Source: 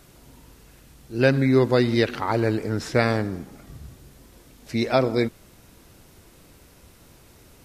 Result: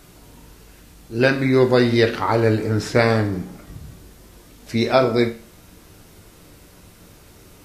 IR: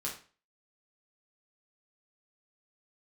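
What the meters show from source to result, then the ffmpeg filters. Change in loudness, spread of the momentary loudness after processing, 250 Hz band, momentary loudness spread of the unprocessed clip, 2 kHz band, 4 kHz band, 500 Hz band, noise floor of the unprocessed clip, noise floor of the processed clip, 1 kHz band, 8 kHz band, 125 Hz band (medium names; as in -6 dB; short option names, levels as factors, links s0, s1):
+3.5 dB, 11 LU, +3.0 dB, 13 LU, +4.5 dB, +4.5 dB, +4.0 dB, -53 dBFS, -48 dBFS, +4.5 dB, +4.0 dB, +3.0 dB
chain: -filter_complex "[0:a]asplit=2[s0][s1];[1:a]atrim=start_sample=2205[s2];[s1][s2]afir=irnorm=-1:irlink=0,volume=0.75[s3];[s0][s3]amix=inputs=2:normalize=0"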